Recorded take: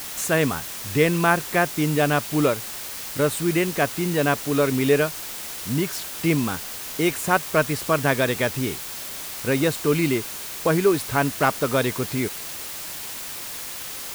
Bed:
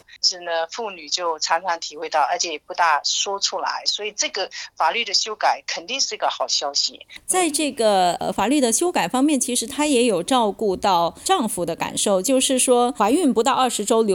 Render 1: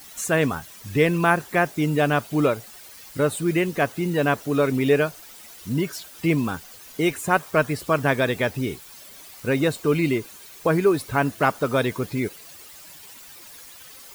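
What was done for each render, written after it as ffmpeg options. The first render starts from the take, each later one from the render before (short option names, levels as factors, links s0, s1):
-af "afftdn=nr=13:nf=-34"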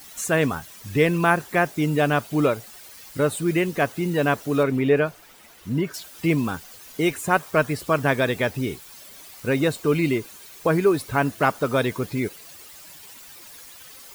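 -filter_complex "[0:a]asettb=1/sr,asplit=3[s0][s1][s2];[s0]atrim=end=4.634[s3];[s1]atrim=start=4.63:end=5.94,asetpts=PTS-STARTPTS,afade=t=in:d=0.004:c=qsin,afade=t=out:st=1.306:d=0.004:c=qsin,acrossover=split=3000[s4][s5];[s5]acompressor=threshold=0.00355:ratio=4:attack=1:release=60[s6];[s4][s6]amix=inputs=2:normalize=0[s7];[s2]atrim=start=5.936[s8];[s3][s7]acrossfade=d=0.004:c1=hsin:c2=qsin[s9];[s9][s8]acrossfade=d=0.004:c1=qsin:c2=hsin"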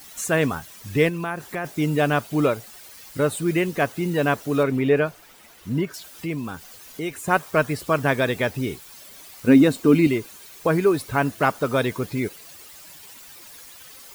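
-filter_complex "[0:a]asplit=3[s0][s1][s2];[s0]afade=t=out:st=1.08:d=0.02[s3];[s1]acompressor=threshold=0.0398:ratio=2.5:attack=3.2:release=140:knee=1:detection=peak,afade=t=in:st=1.08:d=0.02,afade=t=out:st=1.64:d=0.02[s4];[s2]afade=t=in:st=1.64:d=0.02[s5];[s3][s4][s5]amix=inputs=3:normalize=0,asettb=1/sr,asplit=3[s6][s7][s8];[s6]atrim=end=5.854[s9];[s7]atrim=start=5.85:end=7.28,asetpts=PTS-STARTPTS,afade=t=in:d=0.004:c=qsin,afade=t=out:st=1.426:d=0.004:c=qsin,acompressor=threshold=0.0141:ratio=1.5:attack=3.2:release=140:knee=1:detection=peak[s10];[s8]atrim=start=7.276[s11];[s9][s10]acrossfade=d=0.004:c1=hsin:c2=qsin[s12];[s12][s11]acrossfade=d=0.004:c1=qsin:c2=hsin,asettb=1/sr,asplit=3[s13][s14][s15];[s13]atrim=end=9.474[s16];[s14]atrim=start=9.47:end=10.07,asetpts=PTS-STARTPTS,afade=t=in:d=0.004:c=qsin,afade=t=out:st=0.596:d=0.004:c=qsin,equalizer=f=260:w=2.8:g=14.5[s17];[s15]atrim=start=10.066[s18];[s16][s17]acrossfade=d=0.004:c1=hsin:c2=qsin[s19];[s19][s18]acrossfade=d=0.004:c1=qsin:c2=hsin"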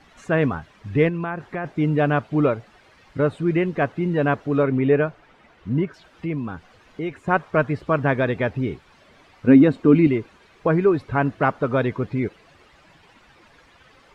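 -af "lowpass=2200,lowshelf=f=230:g=4"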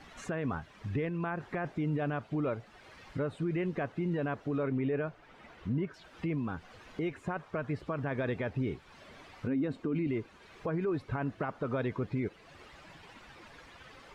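-af "acompressor=threshold=0.00891:ratio=1.5,alimiter=level_in=1.12:limit=0.0631:level=0:latency=1:release=32,volume=0.891"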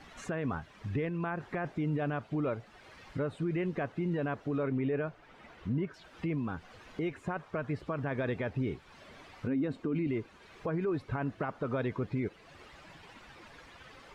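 -af anull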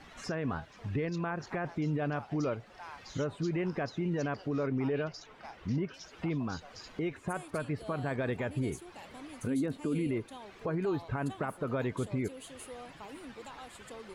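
-filter_complex "[1:a]volume=0.0316[s0];[0:a][s0]amix=inputs=2:normalize=0"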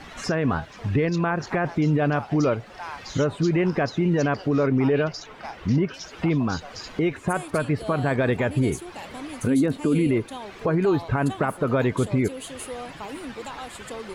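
-af "volume=3.55"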